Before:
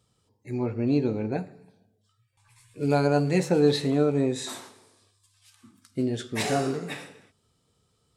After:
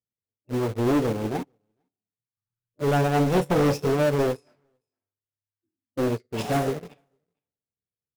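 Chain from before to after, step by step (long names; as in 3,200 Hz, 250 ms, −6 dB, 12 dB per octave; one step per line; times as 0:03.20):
low-pass that shuts in the quiet parts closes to 840 Hz, open at −20.5 dBFS
low-shelf EQ 460 Hz +10.5 dB
formants moved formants +5 semitones
in parallel at −6.5 dB: bit reduction 4 bits
on the sum: hard clipping −13.5 dBFS, distortion −7 dB
on a send: single-tap delay 453 ms −19 dB
on the sum: expander for the loud parts 2.5 to 1, over −38 dBFS
level −3 dB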